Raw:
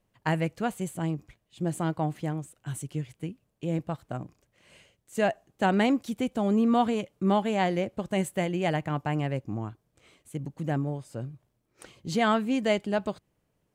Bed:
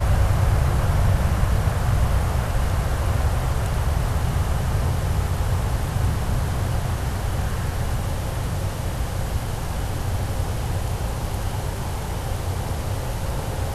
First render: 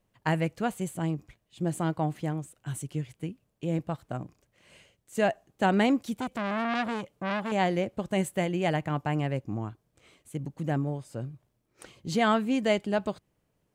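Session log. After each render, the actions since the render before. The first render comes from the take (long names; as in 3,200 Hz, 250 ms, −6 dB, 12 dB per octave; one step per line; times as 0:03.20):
0:06.19–0:07.52: saturating transformer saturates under 2,200 Hz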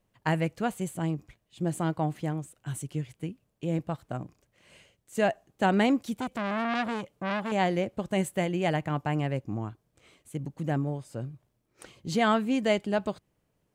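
no processing that can be heard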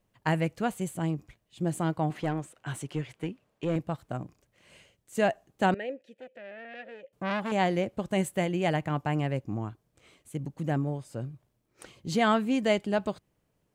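0:02.10–0:03.76: mid-hump overdrive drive 16 dB, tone 1,900 Hz, clips at −18.5 dBFS
0:05.74–0:07.13: formant filter e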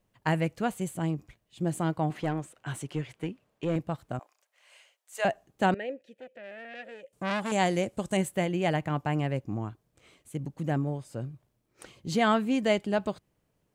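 0:04.19–0:05.25: high-pass filter 650 Hz 24 dB per octave
0:06.43–0:08.17: parametric band 8,500 Hz +13.5 dB 1.2 octaves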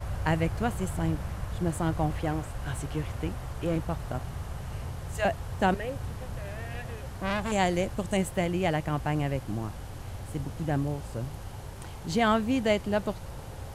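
mix in bed −14.5 dB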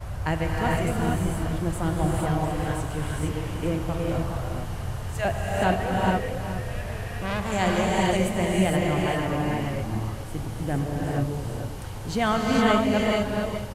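single-tap delay 422 ms −12 dB
reverb whose tail is shaped and stops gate 490 ms rising, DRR −3 dB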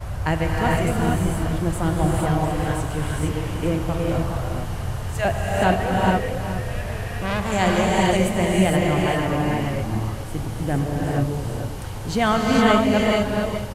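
level +4 dB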